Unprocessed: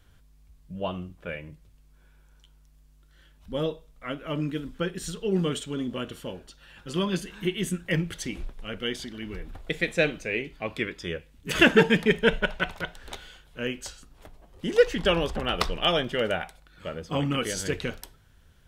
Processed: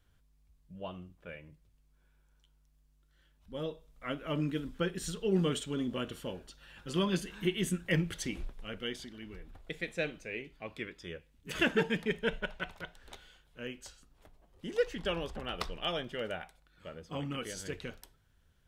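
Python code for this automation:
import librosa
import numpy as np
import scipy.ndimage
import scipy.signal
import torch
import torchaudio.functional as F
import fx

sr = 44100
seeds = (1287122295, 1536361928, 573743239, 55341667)

y = fx.gain(x, sr, db=fx.line((3.52, -11.0), (4.08, -3.5), (8.28, -3.5), (9.38, -11.0)))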